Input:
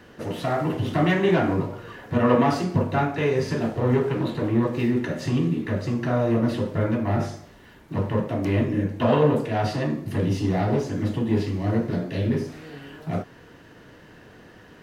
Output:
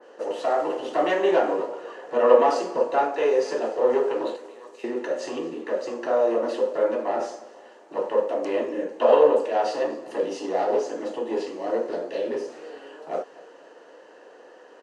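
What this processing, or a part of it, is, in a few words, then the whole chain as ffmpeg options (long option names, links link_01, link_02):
phone speaker on a table: -filter_complex "[0:a]asettb=1/sr,asplit=3[link_01][link_02][link_03];[link_01]atrim=end=4.364[link_04];[link_02]atrim=start=4.36:end=4.84,asetpts=PTS-STARTPTS,afade=type=in:duration=0.004:curve=qsin,afade=type=out:start_time=0.476:duration=0.004:curve=qsin,aderivative[link_05];[link_03]atrim=start=4.836[link_06];[link_04][link_05]acrossfade=duration=0.004:curve1=hsin:curve2=qsin[link_07];[link_07][link_06]acrossfade=duration=0.004:curve1=qsin:curve2=hsin,highpass=frequency=360:width=0.5412,highpass=frequency=360:width=1.3066,equalizer=frequency=520:width_type=q:width=4:gain=9,equalizer=frequency=850:width_type=q:width=4:gain=4,equalizer=frequency=1500:width_type=q:width=4:gain=-3,equalizer=frequency=2200:width_type=q:width=4:gain=-9,equalizer=frequency=3600:width_type=q:width=4:gain=-8,equalizer=frequency=5200:width_type=q:width=4:gain=-4,lowpass=frequency=8000:width=0.5412,lowpass=frequency=8000:width=1.3066,aecho=1:1:243|486|729|972:0.0944|0.05|0.0265|0.0141,adynamicequalizer=threshold=0.0178:dfrequency=2000:dqfactor=0.7:tfrequency=2000:tqfactor=0.7:attack=5:release=100:ratio=0.375:range=1.5:mode=boostabove:tftype=highshelf"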